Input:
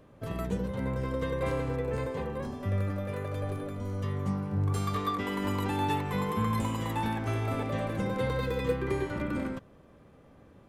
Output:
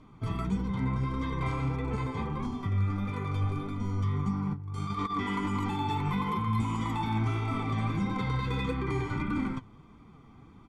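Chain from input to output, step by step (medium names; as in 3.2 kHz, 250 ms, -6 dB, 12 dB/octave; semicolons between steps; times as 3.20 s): low-pass 6.9 kHz 12 dB/octave; comb 0.9 ms, depth 90%; 4.53–5.17 s: compressor with a negative ratio -30 dBFS, ratio -0.5; peak limiter -22 dBFS, peak gain reduction 7.5 dB; flange 1.6 Hz, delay 3 ms, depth 6.7 ms, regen +47%; trim +4 dB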